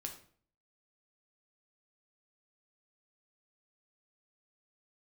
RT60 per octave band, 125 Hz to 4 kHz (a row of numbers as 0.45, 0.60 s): 0.65, 0.60, 0.55, 0.50, 0.45, 0.40 s